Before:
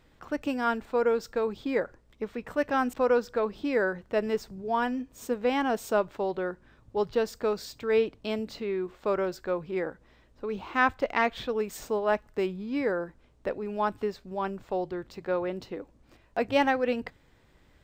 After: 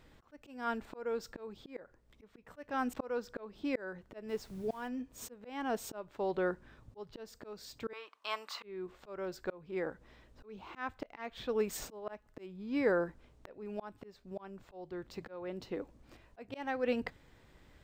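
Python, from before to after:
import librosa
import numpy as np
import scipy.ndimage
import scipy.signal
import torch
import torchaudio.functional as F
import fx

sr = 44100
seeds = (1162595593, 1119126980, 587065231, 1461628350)

y = fx.highpass_res(x, sr, hz=1100.0, q=4.9, at=(7.93, 8.63))
y = fx.auto_swell(y, sr, attack_ms=590.0)
y = fx.dmg_noise_colour(y, sr, seeds[0], colour='pink', level_db=-63.0, at=(4.28, 4.87), fade=0.02)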